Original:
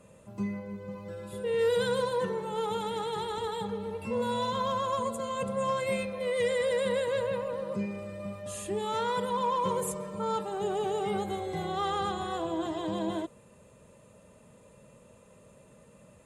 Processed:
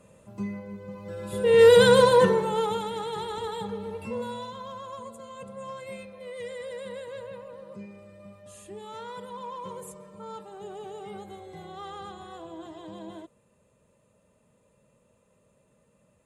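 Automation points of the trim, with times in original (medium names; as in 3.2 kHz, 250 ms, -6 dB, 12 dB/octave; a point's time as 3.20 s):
0.96 s 0 dB
1.60 s +12 dB
2.23 s +12 dB
2.89 s +0.5 dB
4.03 s +0.5 dB
4.57 s -9.5 dB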